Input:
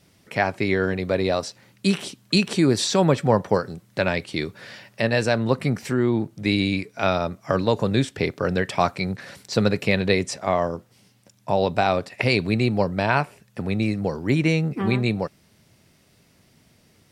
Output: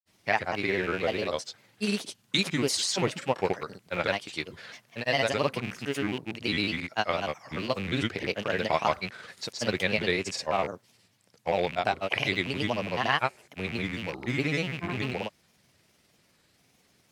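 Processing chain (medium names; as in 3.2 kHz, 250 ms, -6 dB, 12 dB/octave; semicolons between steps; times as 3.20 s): rattle on loud lows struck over -29 dBFS, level -21 dBFS; granulator, pitch spread up and down by 3 st; bass shelf 350 Hz -9 dB; trim -2.5 dB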